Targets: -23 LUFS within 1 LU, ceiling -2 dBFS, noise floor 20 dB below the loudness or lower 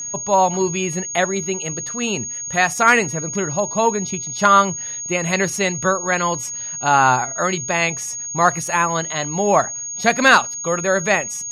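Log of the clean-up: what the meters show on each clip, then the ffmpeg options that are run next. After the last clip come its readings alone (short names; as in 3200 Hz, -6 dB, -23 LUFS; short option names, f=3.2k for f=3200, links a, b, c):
steady tone 6600 Hz; tone level -26 dBFS; loudness -18.5 LUFS; peak -1.0 dBFS; loudness target -23.0 LUFS
-> -af "bandreject=f=6.6k:w=30"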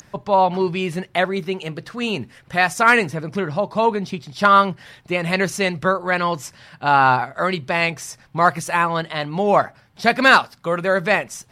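steady tone none; loudness -19.0 LUFS; peak -1.5 dBFS; loudness target -23.0 LUFS
-> -af "volume=-4dB"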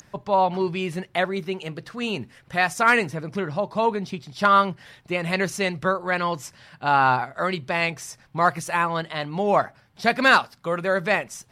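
loudness -23.0 LUFS; peak -5.5 dBFS; noise floor -57 dBFS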